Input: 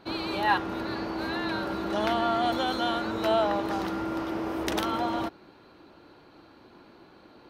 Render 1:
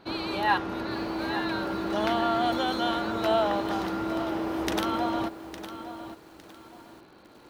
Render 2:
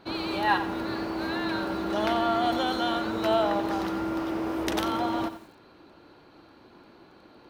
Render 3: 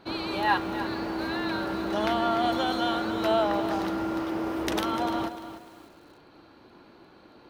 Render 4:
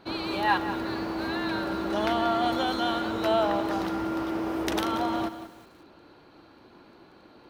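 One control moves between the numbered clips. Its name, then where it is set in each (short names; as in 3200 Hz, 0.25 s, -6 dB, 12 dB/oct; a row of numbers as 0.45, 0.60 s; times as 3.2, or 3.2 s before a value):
lo-fi delay, time: 858, 89, 297, 184 ms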